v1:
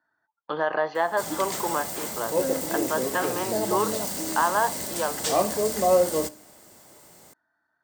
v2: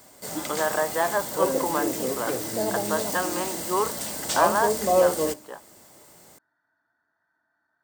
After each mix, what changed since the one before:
background: entry −0.95 s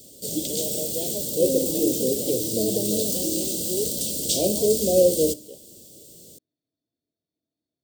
background +6.0 dB
master: add Chebyshev band-stop filter 500–3,300 Hz, order 3

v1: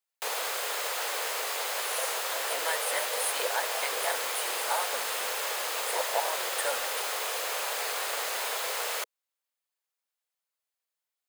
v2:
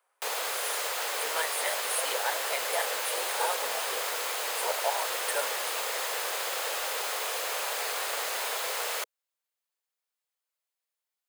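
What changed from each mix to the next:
speech: entry −1.30 s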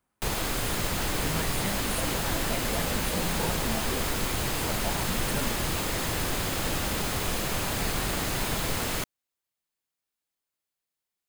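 speech −7.0 dB
master: remove elliptic high-pass filter 470 Hz, stop band 70 dB

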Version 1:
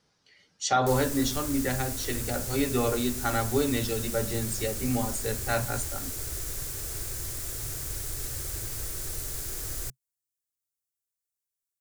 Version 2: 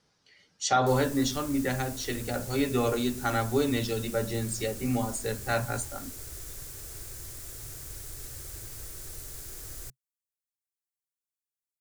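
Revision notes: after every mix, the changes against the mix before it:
background −7.0 dB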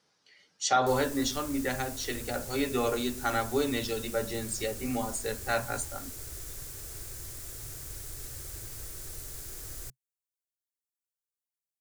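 speech: add high-pass filter 300 Hz 6 dB per octave

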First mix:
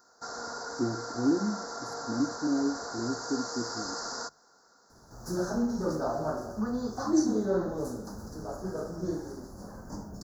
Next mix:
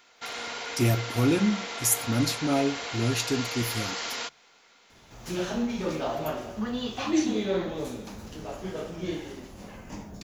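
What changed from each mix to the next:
speech: remove resonant band-pass 300 Hz, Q 2.7
master: remove elliptic band-stop filter 1,500–4,800 Hz, stop band 70 dB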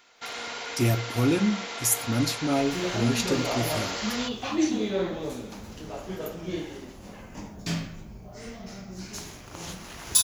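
second sound: entry −2.55 s

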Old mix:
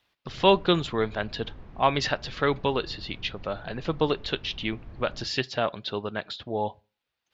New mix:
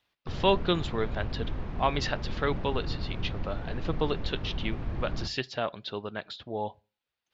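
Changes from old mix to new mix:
speech −4.5 dB
background +10.5 dB

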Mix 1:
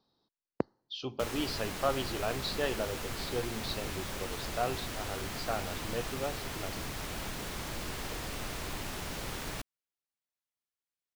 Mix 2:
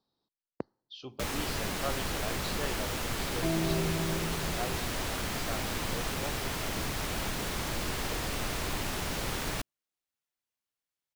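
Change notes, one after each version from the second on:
speech −6.0 dB
first sound +5.0 dB
second sound: unmuted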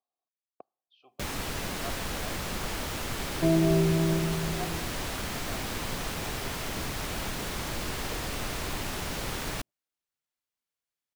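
speech: add formant filter a
second sound +8.0 dB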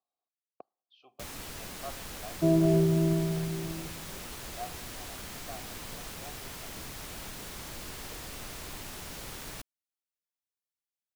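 first sound −10.0 dB
second sound: entry −1.00 s
master: add high-shelf EQ 5,000 Hz +7 dB

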